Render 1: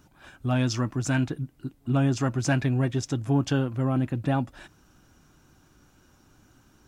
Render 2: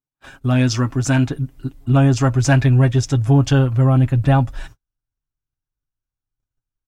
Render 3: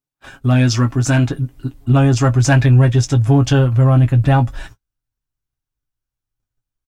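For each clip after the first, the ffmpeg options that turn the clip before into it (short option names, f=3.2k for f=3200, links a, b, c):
-af "agate=range=-45dB:threshold=-51dB:ratio=16:detection=peak,aecho=1:1:7.4:0.52,asubboost=boost=11:cutoff=68,volume=7dB"
-filter_complex "[0:a]asplit=2[a][b];[b]asoftclip=type=hard:threshold=-12.5dB,volume=-10dB[c];[a][c]amix=inputs=2:normalize=0,asplit=2[d][e];[e]adelay=17,volume=-10dB[f];[d][f]amix=inputs=2:normalize=0"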